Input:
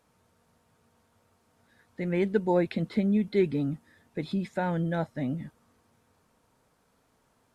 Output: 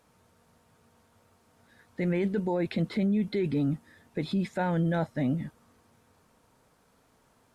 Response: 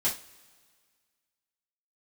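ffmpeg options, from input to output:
-af "alimiter=limit=-24dB:level=0:latency=1:release=13,volume=3.5dB"

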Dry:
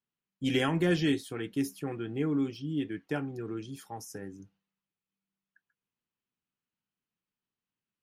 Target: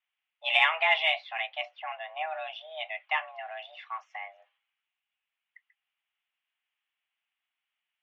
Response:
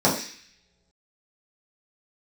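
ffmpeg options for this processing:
-filter_complex "[0:a]highpass=f=470:t=q:w=0.5412,highpass=f=470:t=q:w=1.307,lowpass=f=2.7k:t=q:w=0.5176,lowpass=f=2.7k:t=q:w=0.7071,lowpass=f=2.7k:t=q:w=1.932,afreqshift=320,asettb=1/sr,asplit=3[a][b][c];[a]atrim=end=1.654[d];[b]atrim=start=1.65:end=2.31,asetpts=PTS-STARTPTS,afade=t=in:d=0.004:c=qsin,afade=t=out:st=0.656:d=0.004:c=qsin,highshelf=f=2.2k:g=-7.5[e];[c]atrim=start=2.306[f];[d][e]acrossfade=d=0.004:c1=hsin:c2=qsin[g];[g][f]acrossfade=d=0.004:c1=qsin:c2=hsin,aexciter=amount=2.4:drive=6.8:freq=2.1k,volume=6dB"

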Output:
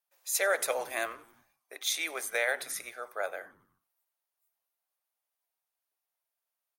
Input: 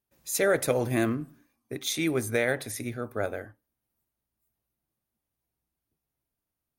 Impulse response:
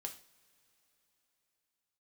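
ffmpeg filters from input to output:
-filter_complex "[0:a]highpass=f=610:w=0.5412,highpass=f=610:w=1.3066,asplit=5[a][b][c][d][e];[b]adelay=91,afreqshift=-110,volume=-24dB[f];[c]adelay=182,afreqshift=-220,volume=-28.3dB[g];[d]adelay=273,afreqshift=-330,volume=-32.6dB[h];[e]adelay=364,afreqshift=-440,volume=-36.9dB[i];[a][f][g][h][i]amix=inputs=5:normalize=0"

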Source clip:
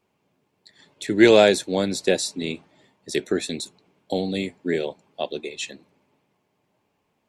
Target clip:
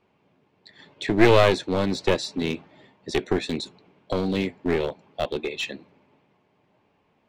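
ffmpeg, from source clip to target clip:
-filter_complex "[0:a]lowpass=3.6k,asplit=2[a][b];[b]acompressor=threshold=-30dB:ratio=6,volume=-1dB[c];[a][c]amix=inputs=2:normalize=0,aeval=exprs='clip(val(0),-1,0.0708)':c=same"

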